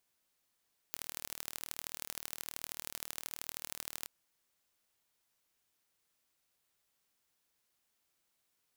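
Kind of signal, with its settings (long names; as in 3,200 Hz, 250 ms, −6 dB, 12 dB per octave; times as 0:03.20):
impulse train 38.8 per second, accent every 3, −11 dBFS 3.14 s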